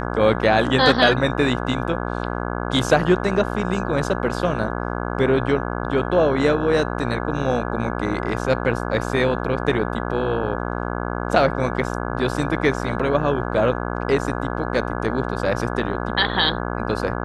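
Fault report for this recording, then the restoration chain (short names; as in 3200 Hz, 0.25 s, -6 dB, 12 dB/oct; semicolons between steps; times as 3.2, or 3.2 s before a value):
buzz 60 Hz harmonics 28 -26 dBFS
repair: de-hum 60 Hz, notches 28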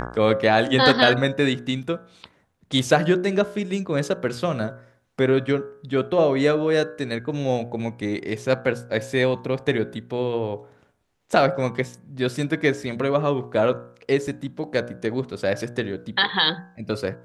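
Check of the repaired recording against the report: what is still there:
none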